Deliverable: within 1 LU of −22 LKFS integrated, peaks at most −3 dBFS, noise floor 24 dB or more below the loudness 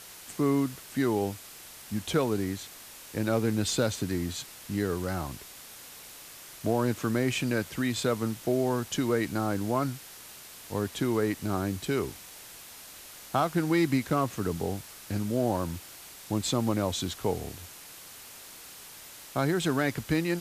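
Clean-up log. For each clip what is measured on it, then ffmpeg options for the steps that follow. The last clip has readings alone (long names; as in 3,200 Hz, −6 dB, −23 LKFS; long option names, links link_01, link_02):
background noise floor −47 dBFS; target noise floor −54 dBFS; integrated loudness −29.5 LKFS; sample peak −14.0 dBFS; target loudness −22.0 LKFS
→ -af "afftdn=noise_reduction=7:noise_floor=-47"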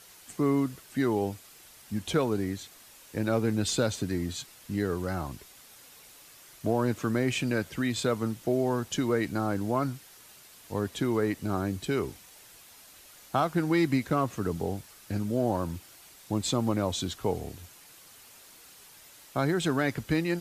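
background noise floor −53 dBFS; target noise floor −54 dBFS
→ -af "afftdn=noise_reduction=6:noise_floor=-53"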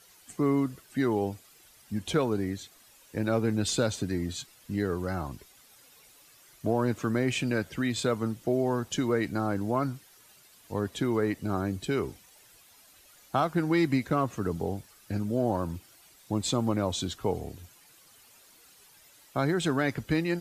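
background noise floor −58 dBFS; integrated loudness −30.0 LKFS; sample peak −14.0 dBFS; target loudness −22.0 LKFS
→ -af "volume=8dB"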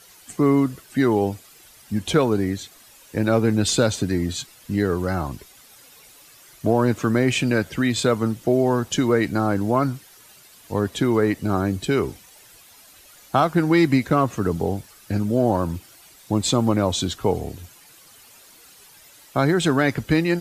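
integrated loudness −22.0 LKFS; sample peak −6.0 dBFS; background noise floor −50 dBFS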